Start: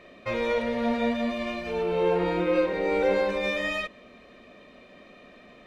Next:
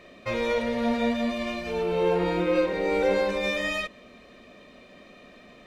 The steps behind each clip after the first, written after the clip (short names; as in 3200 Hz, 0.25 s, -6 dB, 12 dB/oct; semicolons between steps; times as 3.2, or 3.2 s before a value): tone controls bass +2 dB, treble +6 dB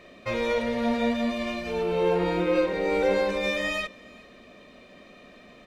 echo 0.406 s -24 dB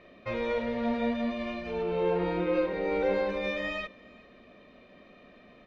air absorption 190 m; gain -3.5 dB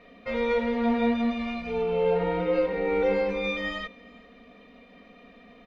comb 4.2 ms, depth 88%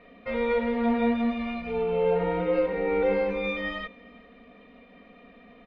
LPF 3300 Hz 12 dB/oct